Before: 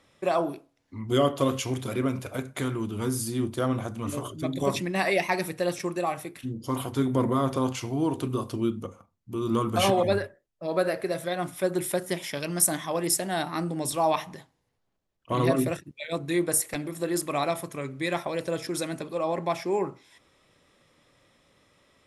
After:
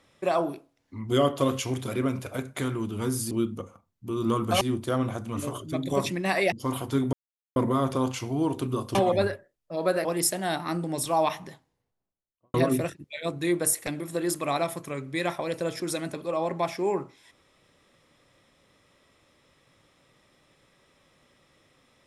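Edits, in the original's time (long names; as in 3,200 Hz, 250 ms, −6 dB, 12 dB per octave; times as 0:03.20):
0:05.22–0:06.56: remove
0:07.17: splice in silence 0.43 s
0:08.56–0:09.86: move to 0:03.31
0:10.96–0:12.92: remove
0:14.29–0:15.41: fade out and dull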